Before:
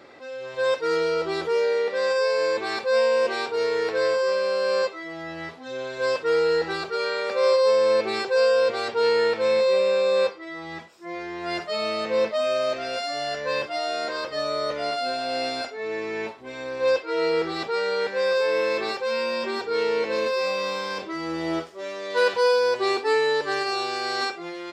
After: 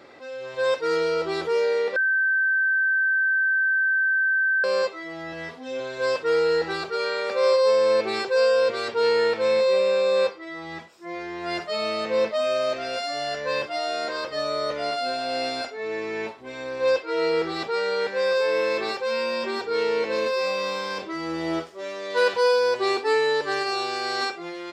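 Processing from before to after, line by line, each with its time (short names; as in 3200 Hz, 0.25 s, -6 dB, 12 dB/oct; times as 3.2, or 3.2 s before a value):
1.96–4.64 bleep 1550 Hz -18.5 dBFS
5.32–5.8 comb 4.2 ms, depth 62%
8.28–9.11 notch 770 Hz, Q 7.8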